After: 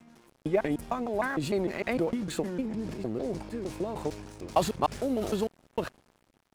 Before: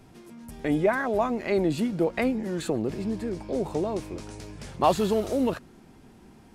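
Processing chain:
slices reordered back to front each 152 ms, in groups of 3
dead-zone distortion −48 dBFS
transient designer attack +4 dB, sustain +8 dB
level −5.5 dB

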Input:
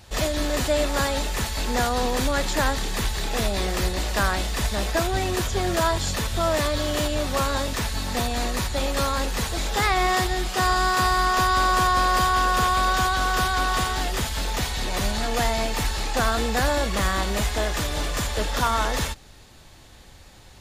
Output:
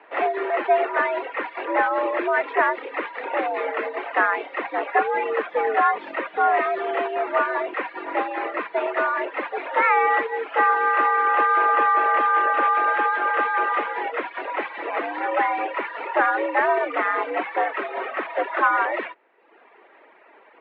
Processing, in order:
single-sideband voice off tune +93 Hz 260–2,300 Hz
reverb reduction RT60 0.86 s
level +5.5 dB

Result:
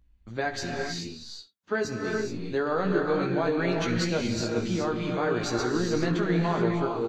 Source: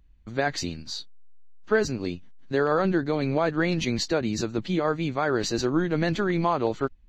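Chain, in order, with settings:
0:00.97–0:02.09: high-pass filter 84 Hz
ambience of single reflections 17 ms −5 dB, 69 ms −16.5 dB
reverb whose tail is shaped and stops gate 450 ms rising, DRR 1 dB
level −5.5 dB

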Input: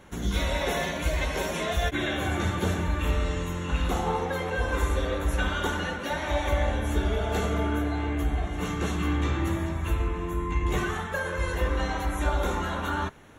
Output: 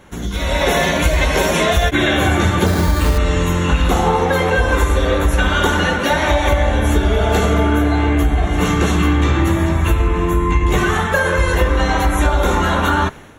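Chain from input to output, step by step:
downward compressor, threshold −26 dBFS, peak gain reduction 7 dB
0:02.66–0:03.18: bad sample-rate conversion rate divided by 8×, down filtered, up hold
automatic gain control gain up to 9.5 dB
level +6 dB

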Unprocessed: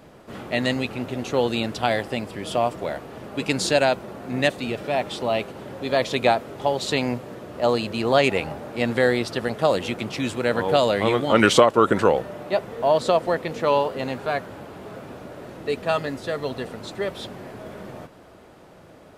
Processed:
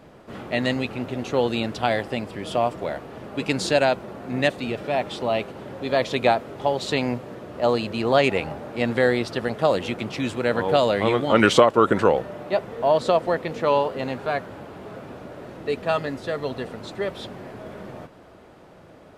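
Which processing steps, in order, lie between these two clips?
high-shelf EQ 6,000 Hz −7 dB

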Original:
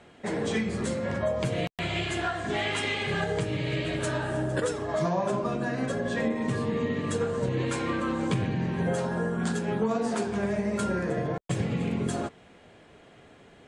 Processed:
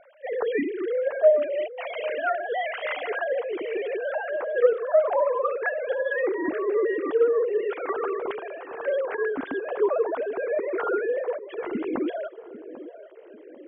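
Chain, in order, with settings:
three sine waves on the formant tracks
low-pass filter 1,500 Hz 6 dB per octave
on a send: feedback echo with a band-pass in the loop 794 ms, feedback 54%, band-pass 420 Hz, level −13.5 dB
on the sum: level +3.5 dB

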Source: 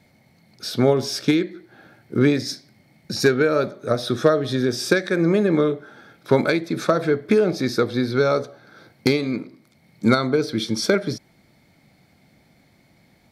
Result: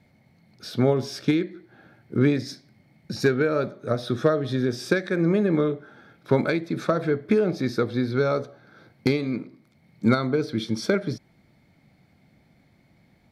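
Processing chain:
bass and treble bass +4 dB, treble −6 dB
level −4.5 dB

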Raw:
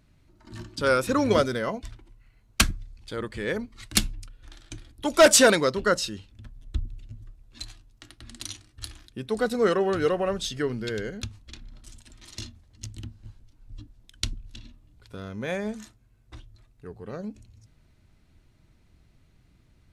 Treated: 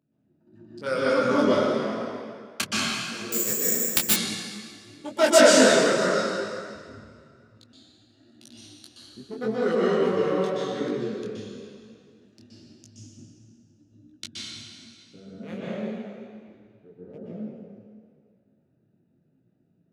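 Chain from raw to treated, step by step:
adaptive Wiener filter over 41 samples
high-pass filter 150 Hz 24 dB per octave
convolution reverb RT60 2.1 s, pre-delay 118 ms, DRR −8 dB
0:03.32–0:04.14: bad sample-rate conversion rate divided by 6×, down none, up zero stuff
micro pitch shift up and down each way 32 cents
level −3 dB

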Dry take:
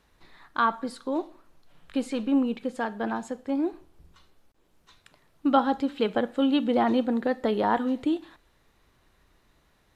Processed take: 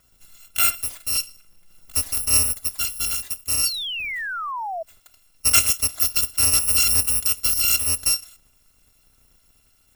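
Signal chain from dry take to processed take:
samples in bit-reversed order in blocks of 256 samples
sound drawn into the spectrogram fall, 0:03.65–0:04.83, 630–4,700 Hz −33 dBFS
level +4.5 dB

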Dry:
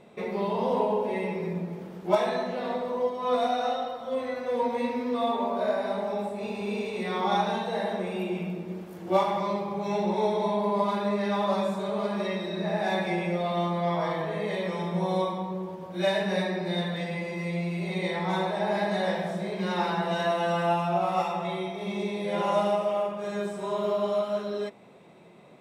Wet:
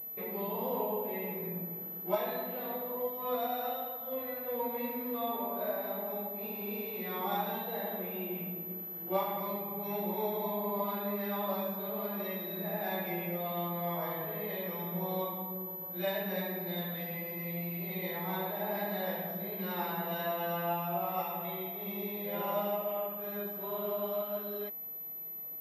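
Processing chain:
switching amplifier with a slow clock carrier 12,000 Hz
level −8.5 dB

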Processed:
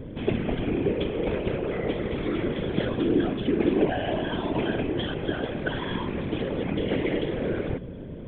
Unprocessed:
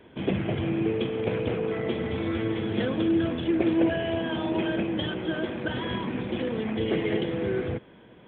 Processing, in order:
hum with harmonics 100 Hz, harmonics 5, −38 dBFS −4 dB per octave
random phases in short frames

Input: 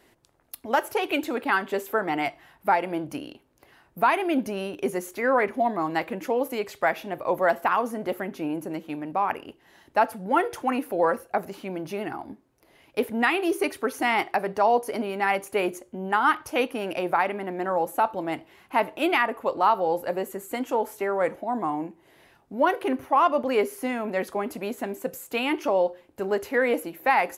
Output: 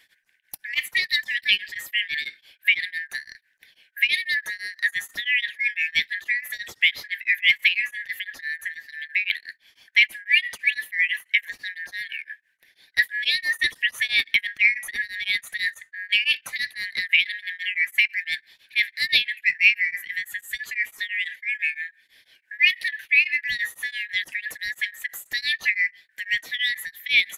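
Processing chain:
band-splitting scrambler in four parts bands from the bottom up 4123
harmonic and percussive parts rebalanced percussive +6 dB
tremolo along a rectified sine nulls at 6 Hz

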